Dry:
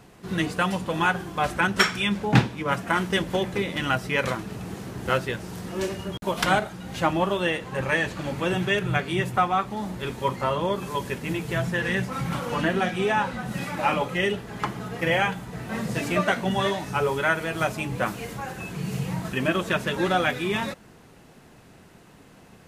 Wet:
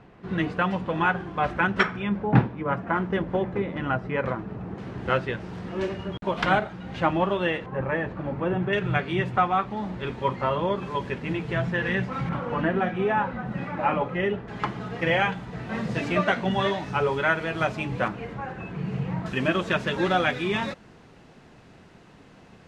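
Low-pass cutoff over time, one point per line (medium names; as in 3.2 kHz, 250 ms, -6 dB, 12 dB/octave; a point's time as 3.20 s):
2.4 kHz
from 1.83 s 1.4 kHz
from 4.78 s 2.9 kHz
from 7.66 s 1.3 kHz
from 8.73 s 3.1 kHz
from 12.29 s 1.8 kHz
from 14.48 s 4.1 kHz
from 18.08 s 2.1 kHz
from 19.26 s 5.3 kHz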